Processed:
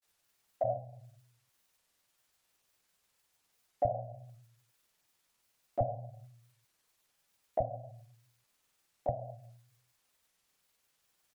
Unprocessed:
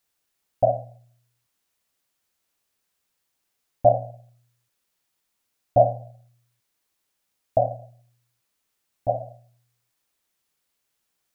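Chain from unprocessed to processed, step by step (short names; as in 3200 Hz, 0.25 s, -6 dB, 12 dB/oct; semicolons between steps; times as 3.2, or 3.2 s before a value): grains, spray 26 ms, pitch spread up and down by 0 st; compressor 3:1, threshold -37 dBFS, peak gain reduction 19 dB; bands offset in time highs, lows 30 ms, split 280 Hz; gain +3.5 dB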